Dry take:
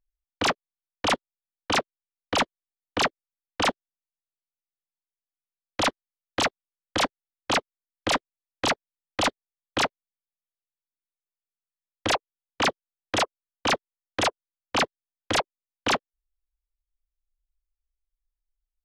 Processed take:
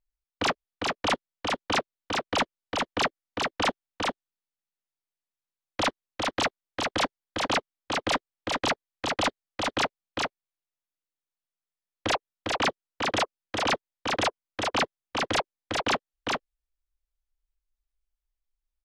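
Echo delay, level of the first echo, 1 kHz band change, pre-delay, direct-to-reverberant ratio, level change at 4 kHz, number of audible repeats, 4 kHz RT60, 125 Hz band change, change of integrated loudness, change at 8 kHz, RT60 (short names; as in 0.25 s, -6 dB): 0.403 s, -3.0 dB, -0.5 dB, none, none, -1.0 dB, 1, none, 0.0 dB, -2.0 dB, -2.5 dB, none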